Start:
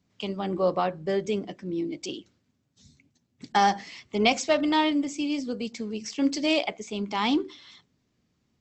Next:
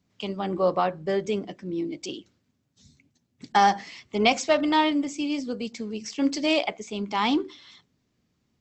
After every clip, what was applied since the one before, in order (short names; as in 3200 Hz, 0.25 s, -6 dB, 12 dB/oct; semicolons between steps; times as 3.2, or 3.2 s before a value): dynamic EQ 1100 Hz, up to +3 dB, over -36 dBFS, Q 0.72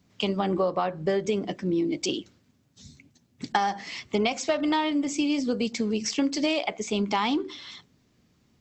compressor 12:1, threshold -29 dBFS, peak gain reduction 15.5 dB; gain +7.5 dB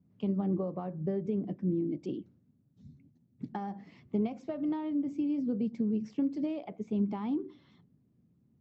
band-pass 160 Hz, Q 1.2